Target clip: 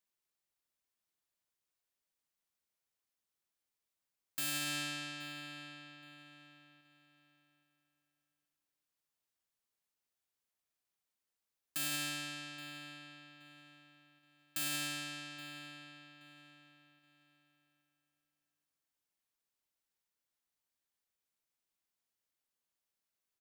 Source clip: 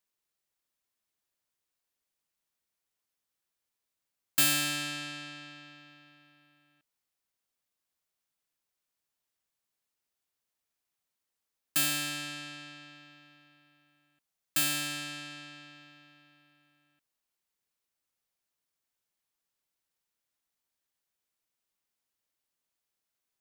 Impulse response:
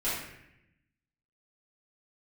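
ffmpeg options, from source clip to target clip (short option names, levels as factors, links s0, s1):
-filter_complex "[0:a]alimiter=limit=0.0668:level=0:latency=1,asplit=2[s0][s1];[s1]adelay=824,lowpass=f=4700:p=1,volume=0.158,asplit=2[s2][s3];[s3]adelay=824,lowpass=f=4700:p=1,volume=0.33,asplit=2[s4][s5];[s5]adelay=824,lowpass=f=4700:p=1,volume=0.33[s6];[s0][s2][s4][s6]amix=inputs=4:normalize=0,volume=0.631"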